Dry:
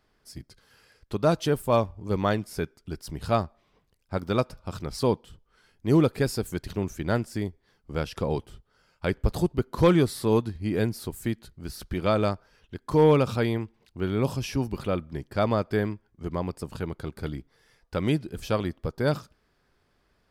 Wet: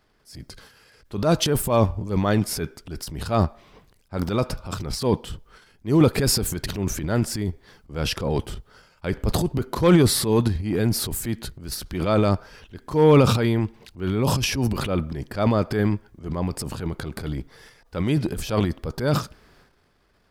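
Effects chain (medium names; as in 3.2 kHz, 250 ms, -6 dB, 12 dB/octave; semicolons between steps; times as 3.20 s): transient shaper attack -7 dB, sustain +11 dB; trim +4 dB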